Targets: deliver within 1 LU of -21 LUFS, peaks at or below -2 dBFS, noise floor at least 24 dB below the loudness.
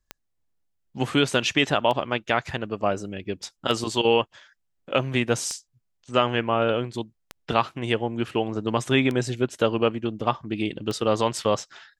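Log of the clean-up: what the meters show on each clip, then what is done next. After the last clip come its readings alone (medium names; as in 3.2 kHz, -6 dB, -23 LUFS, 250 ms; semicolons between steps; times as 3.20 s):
clicks found 7; loudness -25.0 LUFS; peak level -5.0 dBFS; loudness target -21.0 LUFS
-> de-click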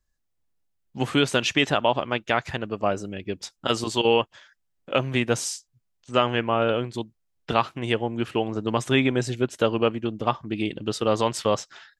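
clicks found 0; loudness -25.0 LUFS; peak level -5.0 dBFS; loudness target -21.0 LUFS
-> trim +4 dB; peak limiter -2 dBFS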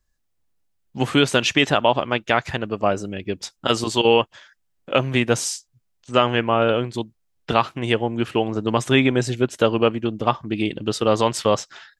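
loudness -21.0 LUFS; peak level -2.0 dBFS; noise floor -70 dBFS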